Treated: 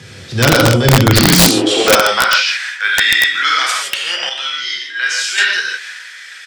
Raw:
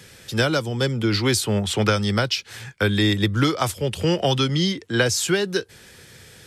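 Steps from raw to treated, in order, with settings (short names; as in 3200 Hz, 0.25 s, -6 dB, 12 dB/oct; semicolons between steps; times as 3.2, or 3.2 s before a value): LPF 6500 Hz 12 dB/oct; transient shaper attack -9 dB, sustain +5 dB; 1.13–1.85 frequency shift -90 Hz; non-linear reverb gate 0.19 s flat, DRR -3 dB; high-pass sweep 96 Hz -> 1700 Hz, 1.12–2.46; 4.29–5.38 resonator 74 Hz, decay 0.62 s, harmonics all, mix 70%; wrapped overs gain 8.5 dB; speakerphone echo 0.16 s, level -19 dB; gain +7 dB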